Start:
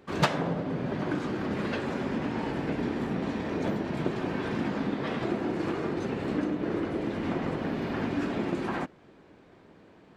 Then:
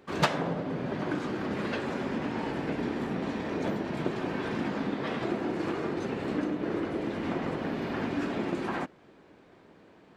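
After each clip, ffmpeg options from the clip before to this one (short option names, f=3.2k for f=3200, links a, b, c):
-af "lowshelf=f=170:g=-5"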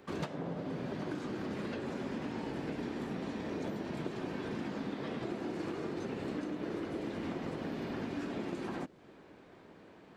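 -filter_complex "[0:a]acrossover=split=560|3600[a][b][c];[a]acompressor=threshold=-37dB:ratio=4[d];[b]acompressor=threshold=-48dB:ratio=4[e];[c]acompressor=threshold=-58dB:ratio=4[f];[d][e][f]amix=inputs=3:normalize=0"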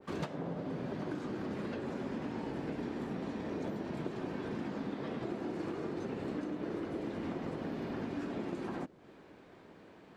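-af "adynamicequalizer=threshold=0.00126:dfrequency=1700:dqfactor=0.7:tfrequency=1700:tqfactor=0.7:attack=5:release=100:ratio=0.375:range=2:mode=cutabove:tftype=highshelf"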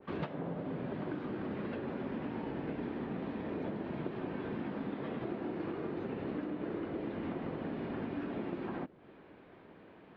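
-af "lowpass=f=3.4k:w=0.5412,lowpass=f=3.4k:w=1.3066"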